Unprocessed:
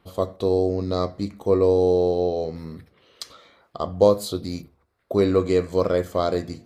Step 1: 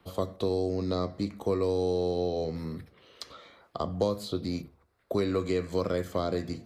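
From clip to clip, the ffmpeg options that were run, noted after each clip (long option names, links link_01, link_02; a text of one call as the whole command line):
ffmpeg -i in.wav -filter_complex "[0:a]acrossover=split=110|320|1200|4600[link_01][link_02][link_03][link_04][link_05];[link_01]acompressor=threshold=-43dB:ratio=4[link_06];[link_02]acompressor=threshold=-31dB:ratio=4[link_07];[link_03]acompressor=threshold=-32dB:ratio=4[link_08];[link_04]acompressor=threshold=-40dB:ratio=4[link_09];[link_05]acompressor=threshold=-52dB:ratio=4[link_10];[link_06][link_07][link_08][link_09][link_10]amix=inputs=5:normalize=0" out.wav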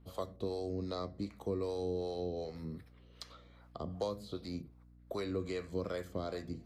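ffmpeg -i in.wav -filter_complex "[0:a]acrossover=split=490[link_01][link_02];[link_01]aeval=exprs='val(0)*(1-0.7/2+0.7/2*cos(2*PI*2.6*n/s))':channel_layout=same[link_03];[link_02]aeval=exprs='val(0)*(1-0.7/2-0.7/2*cos(2*PI*2.6*n/s))':channel_layout=same[link_04];[link_03][link_04]amix=inputs=2:normalize=0,aeval=exprs='val(0)+0.00224*(sin(2*PI*60*n/s)+sin(2*PI*2*60*n/s)/2+sin(2*PI*3*60*n/s)/3+sin(2*PI*4*60*n/s)/4+sin(2*PI*5*60*n/s)/5)':channel_layout=same,volume=-5.5dB" out.wav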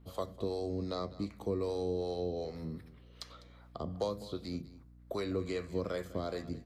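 ffmpeg -i in.wav -af "aecho=1:1:201:0.133,volume=2dB" out.wav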